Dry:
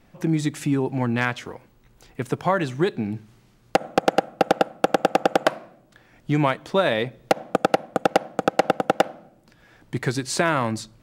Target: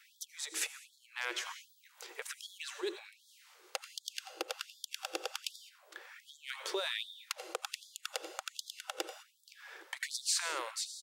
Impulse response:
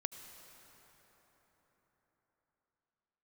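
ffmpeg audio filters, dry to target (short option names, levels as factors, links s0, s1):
-filter_complex "[0:a]acrossover=split=330|3000[s0][s1][s2];[s1]acompressor=threshold=0.0141:ratio=3[s3];[s0][s3][s2]amix=inputs=3:normalize=0,asplit=2[s4][s5];[s5]adelay=87.46,volume=0.1,highshelf=f=4000:g=-1.97[s6];[s4][s6]amix=inputs=2:normalize=0,alimiter=limit=0.0841:level=0:latency=1:release=146,equalizer=f=670:w=3.6:g=-10[s7];[1:a]atrim=start_sample=2205,afade=t=out:st=0.27:d=0.01,atrim=end_sample=12348[s8];[s7][s8]afir=irnorm=-1:irlink=0,acompressor=threshold=0.0224:ratio=6,afftfilt=real='re*gte(b*sr/1024,320*pow(3300/320,0.5+0.5*sin(2*PI*1.3*pts/sr)))':imag='im*gte(b*sr/1024,320*pow(3300/320,0.5+0.5*sin(2*PI*1.3*pts/sr)))':win_size=1024:overlap=0.75,volume=2"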